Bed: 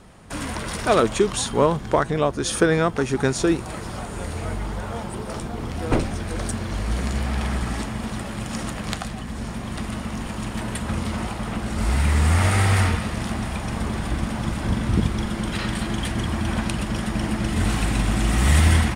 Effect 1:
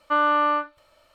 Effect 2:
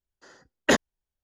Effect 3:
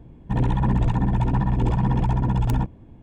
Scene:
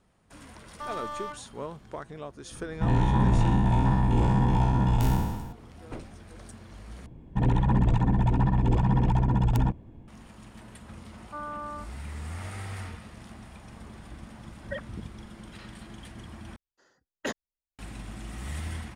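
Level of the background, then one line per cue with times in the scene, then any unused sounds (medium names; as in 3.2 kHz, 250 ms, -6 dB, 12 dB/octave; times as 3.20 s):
bed -19 dB
0.70 s: add 1 -7.5 dB + slew-rate limiter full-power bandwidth 44 Hz
2.51 s: add 3 -4 dB + spectral sustain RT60 1.26 s
7.06 s: replace with 3 -2 dB
11.22 s: add 1 -16 dB + low-pass 1.4 kHz 24 dB/octave
14.03 s: add 2 -16 dB + formants replaced by sine waves
16.56 s: replace with 2 -12.5 dB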